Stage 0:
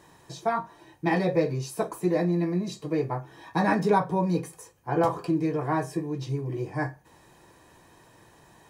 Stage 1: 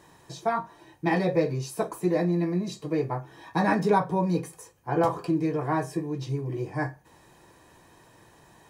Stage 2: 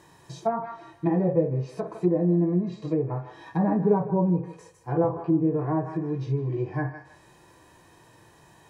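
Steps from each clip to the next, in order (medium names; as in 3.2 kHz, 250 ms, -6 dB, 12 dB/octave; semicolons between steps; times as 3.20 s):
no audible change
thinning echo 156 ms, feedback 31%, high-pass 470 Hz, level -13 dB; low-pass that closes with the level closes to 720 Hz, closed at -22 dBFS; harmonic-percussive split percussive -11 dB; trim +3.5 dB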